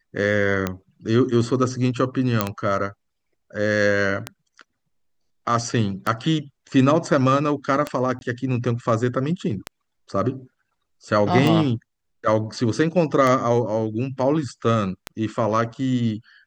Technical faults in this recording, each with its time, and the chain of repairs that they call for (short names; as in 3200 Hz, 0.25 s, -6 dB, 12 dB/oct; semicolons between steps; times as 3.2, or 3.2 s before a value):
tick 33 1/3 rpm -9 dBFS
2.41 pop -4 dBFS
8.19–8.21 gap 21 ms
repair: de-click; interpolate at 8.19, 21 ms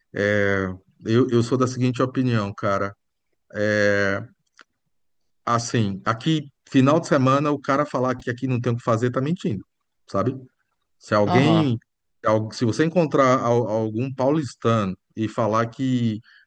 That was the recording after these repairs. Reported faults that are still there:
none